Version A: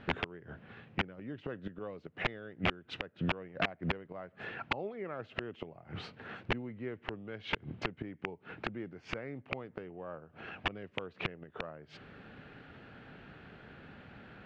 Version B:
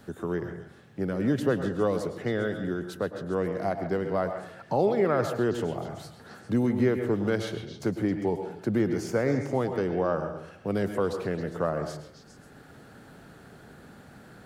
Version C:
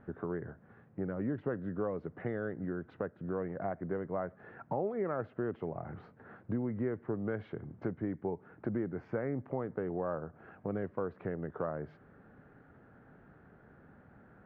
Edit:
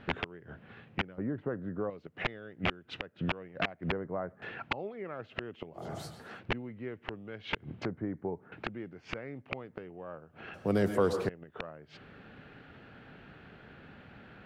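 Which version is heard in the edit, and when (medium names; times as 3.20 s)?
A
1.18–1.90 s: from C
3.92–4.42 s: from C
5.85–6.28 s: from B, crossfade 0.24 s
7.85–8.52 s: from C
10.54–11.29 s: from B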